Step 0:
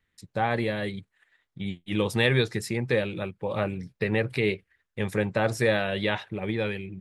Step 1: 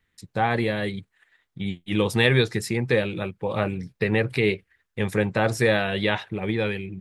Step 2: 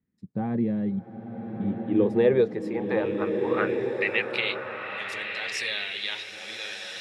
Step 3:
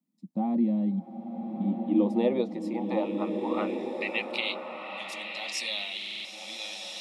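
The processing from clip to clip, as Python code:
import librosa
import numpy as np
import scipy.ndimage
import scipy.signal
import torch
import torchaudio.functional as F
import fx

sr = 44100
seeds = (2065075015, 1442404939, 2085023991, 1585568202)

y1 = fx.notch(x, sr, hz=580.0, q=15.0)
y1 = y1 * librosa.db_to_amplitude(3.5)
y2 = fx.filter_sweep_bandpass(y1, sr, from_hz=210.0, to_hz=4600.0, start_s=1.43, end_s=4.82, q=2.6)
y2 = fx.rev_bloom(y2, sr, seeds[0], attack_ms=1440, drr_db=2.5)
y2 = y2 * librosa.db_to_amplitude(5.5)
y3 = scipy.signal.sosfilt(scipy.signal.butter(4, 160.0, 'highpass', fs=sr, output='sos'), y2)
y3 = fx.fixed_phaser(y3, sr, hz=430.0, stages=6)
y3 = fx.buffer_glitch(y3, sr, at_s=(5.97,), block=2048, repeats=5)
y3 = y3 * librosa.db_to_amplitude(2.0)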